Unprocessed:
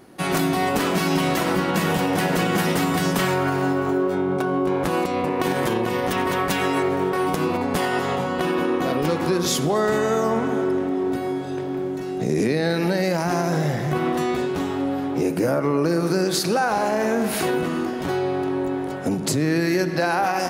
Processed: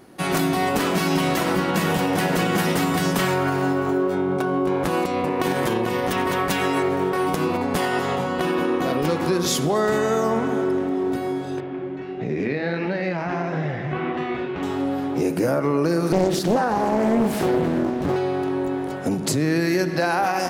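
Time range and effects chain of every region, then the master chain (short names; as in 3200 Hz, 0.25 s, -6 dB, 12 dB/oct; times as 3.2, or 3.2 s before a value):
11.6–14.63 flange 1.5 Hz, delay 6.4 ms, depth 9.5 ms, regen -43% + synth low-pass 2500 Hz, resonance Q 1.6
16.12–18.16 tilt shelf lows +5.5 dB, about 690 Hz + Doppler distortion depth 0.66 ms
whole clip: dry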